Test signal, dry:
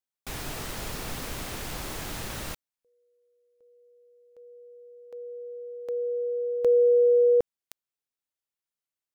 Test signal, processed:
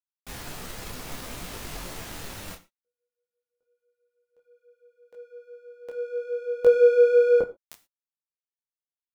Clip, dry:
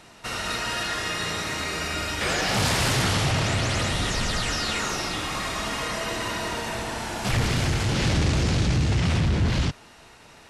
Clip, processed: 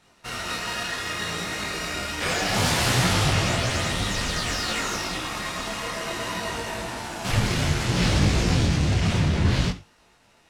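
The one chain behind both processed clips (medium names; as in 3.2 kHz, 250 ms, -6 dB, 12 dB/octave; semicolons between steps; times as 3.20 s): power-law waveshaper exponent 1.4; gated-style reverb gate 140 ms falling, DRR 9.5 dB; detune thickener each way 21 cents; trim +7 dB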